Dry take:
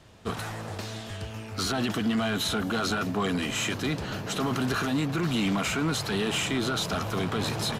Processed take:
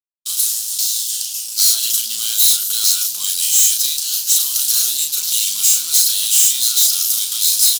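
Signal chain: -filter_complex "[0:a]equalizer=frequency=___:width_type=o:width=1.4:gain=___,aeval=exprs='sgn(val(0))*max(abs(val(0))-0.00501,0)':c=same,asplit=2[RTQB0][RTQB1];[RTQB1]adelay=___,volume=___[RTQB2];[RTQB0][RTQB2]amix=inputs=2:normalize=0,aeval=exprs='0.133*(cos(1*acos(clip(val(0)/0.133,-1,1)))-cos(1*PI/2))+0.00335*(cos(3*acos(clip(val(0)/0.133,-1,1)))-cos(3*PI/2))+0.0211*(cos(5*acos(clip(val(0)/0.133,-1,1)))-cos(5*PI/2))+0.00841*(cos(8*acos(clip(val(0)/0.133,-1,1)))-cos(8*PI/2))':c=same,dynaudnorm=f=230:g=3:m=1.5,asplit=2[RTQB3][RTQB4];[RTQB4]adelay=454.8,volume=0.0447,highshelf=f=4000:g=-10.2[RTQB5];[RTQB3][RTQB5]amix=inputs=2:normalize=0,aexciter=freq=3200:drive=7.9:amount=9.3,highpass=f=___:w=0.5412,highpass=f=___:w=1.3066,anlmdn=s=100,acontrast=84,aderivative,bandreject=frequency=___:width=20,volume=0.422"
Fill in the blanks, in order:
460, -14.5, 35, 0.531, 56, 56, 1800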